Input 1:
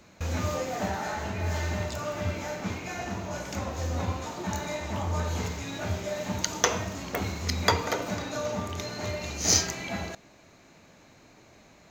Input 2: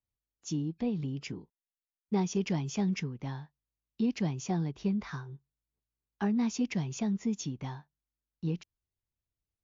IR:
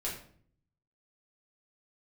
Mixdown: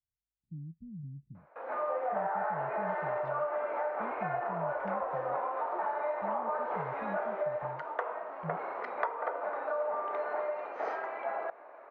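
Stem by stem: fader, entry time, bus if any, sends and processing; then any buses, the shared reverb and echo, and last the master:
-1.5 dB, 1.35 s, no send, high-pass 530 Hz 24 dB/octave; level rider gain up to 12 dB
-6.0 dB, 0.00 s, no send, inverse Chebyshev low-pass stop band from 630 Hz, stop band 60 dB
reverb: none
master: low-pass 1.4 kHz 24 dB/octave; compression 4:1, threshold -31 dBFS, peak gain reduction 12.5 dB

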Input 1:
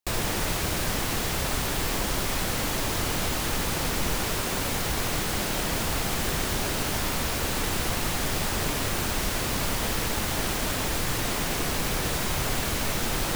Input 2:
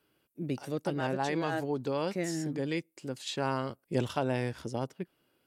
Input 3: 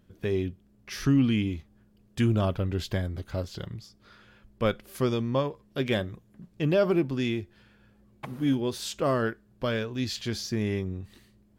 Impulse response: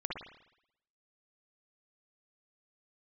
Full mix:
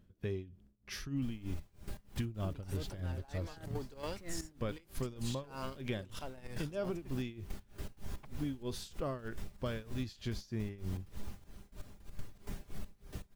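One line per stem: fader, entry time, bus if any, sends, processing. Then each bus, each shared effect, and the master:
-10.5 dB, 1.10 s, bus A, no send, reverb removal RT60 0.5 s; bass shelf 440 Hz +10 dB; feedback comb 200 Hz, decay 0.58 s, harmonics all, mix 80%
-5.0 dB, 2.05 s, bus A, no send, tilt EQ +2 dB/octave; power-law waveshaper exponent 0.7
-5.5 dB, 0.00 s, no bus, no send, none
bus A: 0.0 dB, trance gate "xx...x..x.xx.xx" 160 bpm -12 dB; peak limiter -30 dBFS, peak gain reduction 9.5 dB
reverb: none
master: bass shelf 120 Hz +9.5 dB; tremolo 3.2 Hz, depth 90%; compression 10:1, threshold -33 dBFS, peak gain reduction 11 dB

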